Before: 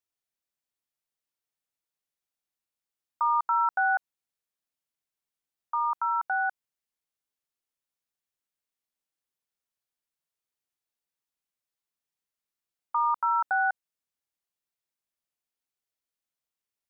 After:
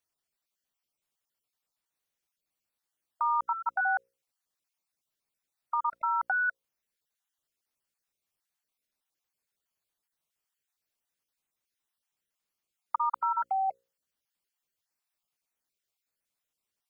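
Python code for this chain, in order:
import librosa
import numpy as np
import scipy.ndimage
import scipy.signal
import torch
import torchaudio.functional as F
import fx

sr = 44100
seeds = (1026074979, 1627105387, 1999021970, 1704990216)

p1 = fx.spec_dropout(x, sr, seeds[0], share_pct=30)
p2 = fx.hum_notches(p1, sr, base_hz=60, count=9)
p3 = fx.over_compress(p2, sr, threshold_db=-31.0, ratio=-0.5)
p4 = p2 + F.gain(torch.from_numpy(p3), -1.0).numpy()
y = F.gain(torch.from_numpy(p4), -4.0).numpy()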